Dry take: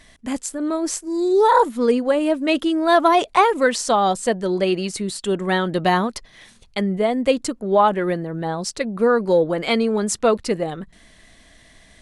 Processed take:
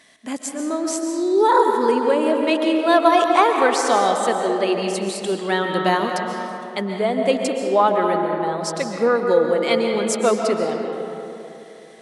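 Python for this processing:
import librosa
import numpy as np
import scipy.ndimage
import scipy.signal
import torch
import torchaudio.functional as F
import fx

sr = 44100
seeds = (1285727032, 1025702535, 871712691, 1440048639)

y = scipy.signal.sosfilt(scipy.signal.butter(2, 240.0, 'highpass', fs=sr, output='sos'), x)
y = fx.rev_freeverb(y, sr, rt60_s=3.0, hf_ratio=0.5, predelay_ms=95, drr_db=2.5)
y = y * librosa.db_to_amplitude(-1.0)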